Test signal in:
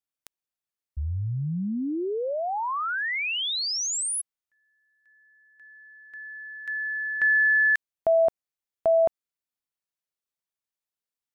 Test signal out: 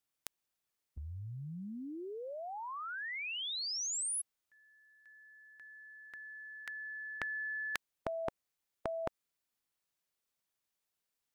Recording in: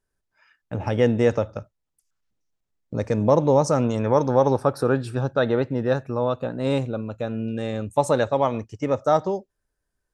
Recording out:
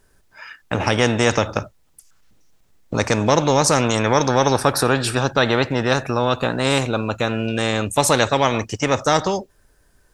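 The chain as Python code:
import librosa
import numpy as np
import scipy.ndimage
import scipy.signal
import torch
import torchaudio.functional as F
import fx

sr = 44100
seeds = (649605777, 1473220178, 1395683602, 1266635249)

y = fx.spectral_comp(x, sr, ratio=2.0)
y = y * 10.0 ** (3.5 / 20.0)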